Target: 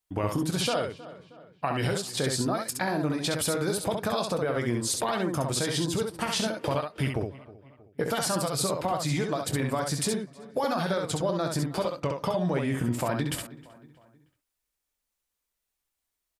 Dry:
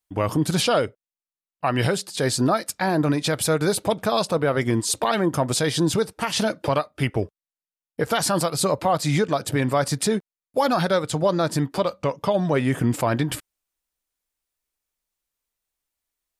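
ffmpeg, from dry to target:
-filter_complex "[0:a]asplit=2[s0][s1];[s1]adelay=315,lowpass=f=3100:p=1,volume=0.0631,asplit=2[s2][s3];[s3]adelay=315,lowpass=f=3100:p=1,volume=0.48,asplit=2[s4][s5];[s5]adelay=315,lowpass=f=3100:p=1,volume=0.48[s6];[s2][s4][s6]amix=inputs=3:normalize=0[s7];[s0][s7]amix=inputs=2:normalize=0,acompressor=threshold=0.0631:ratio=6,asplit=2[s8][s9];[s9]aecho=0:1:22|67:0.266|0.596[s10];[s8][s10]amix=inputs=2:normalize=0,volume=0.841"

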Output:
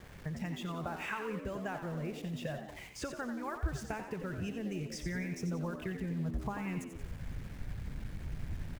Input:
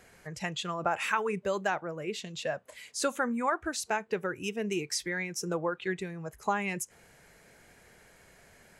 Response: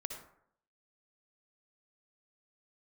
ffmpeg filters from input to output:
-filter_complex "[0:a]bass=f=250:g=14,treble=f=4000:g=-14,bandreject=f=4100:w=6.5,acrossover=split=5700[s0][s1];[s0]acompressor=threshold=0.0141:ratio=6[s2];[s2][s1]amix=inputs=2:normalize=0,lowpass=8900,aeval=exprs='val(0)*gte(abs(val(0)),0.00251)':c=same,asubboost=boost=6.5:cutoff=100,asplit=6[s3][s4][s5][s6][s7][s8];[s4]adelay=89,afreqshift=76,volume=0.376[s9];[s5]adelay=178,afreqshift=152,volume=0.176[s10];[s6]adelay=267,afreqshift=228,volume=0.0832[s11];[s7]adelay=356,afreqshift=304,volume=0.0389[s12];[s8]adelay=445,afreqshift=380,volume=0.0184[s13];[s3][s9][s10][s11][s12][s13]amix=inputs=6:normalize=0,asplit=2[s14][s15];[1:a]atrim=start_sample=2205[s16];[s15][s16]afir=irnorm=-1:irlink=0,volume=0.631[s17];[s14][s17]amix=inputs=2:normalize=0,volume=0.75"

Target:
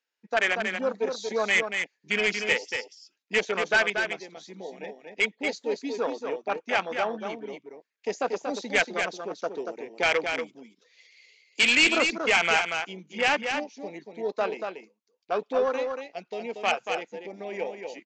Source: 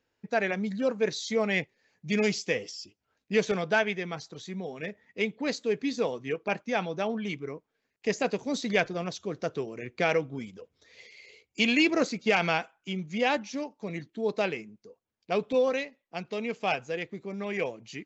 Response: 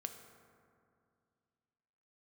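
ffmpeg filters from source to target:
-af "afwtdn=0.0282,highpass=f=220:w=0.5412,highpass=f=220:w=1.3066,tiltshelf=f=760:g=-9.5,aresample=16000,asoftclip=type=tanh:threshold=0.112,aresample=44100,aecho=1:1:234:0.501,volume=1.58"

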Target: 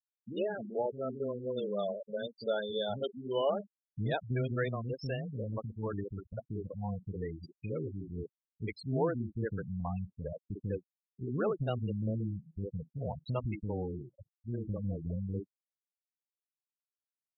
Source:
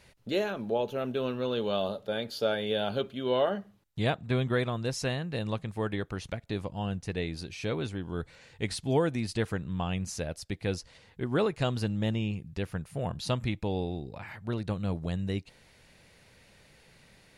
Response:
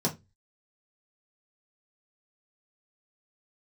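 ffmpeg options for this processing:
-filter_complex "[0:a]asettb=1/sr,asplit=3[s0][s1][s2];[s0]atrim=end=2.574[s3];[s1]atrim=start=2.57:end=4.76,asetpts=PTS-STARTPTS,afade=t=in:d=0.004:c=qsin,afade=t=out:st=2.186:d=0.004:c=qsin,highshelf=f=7300:g=9[s4];[s2]atrim=start=4.756[s5];[s3][s4]acrossfade=d=0.004:c1=hsin:c2=qsin[s6];[s6][s5]acrossfade=d=0.004:c1=qsin:c2=hsin,afftfilt=real='re*gte(hypot(re,im),0.0631)':imag='im*gte(hypot(re,im),0.0631)':win_size=1024:overlap=0.75,acrossover=split=290[s7][s8];[s8]adelay=50[s9];[s7][s9]amix=inputs=2:normalize=0,volume=0.708"

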